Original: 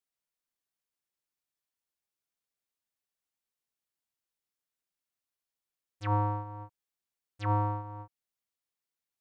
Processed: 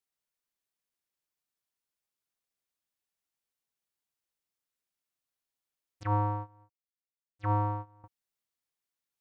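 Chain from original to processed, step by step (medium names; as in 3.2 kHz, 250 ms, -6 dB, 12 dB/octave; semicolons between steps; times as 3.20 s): 6.03–8.04 s: gate -37 dBFS, range -17 dB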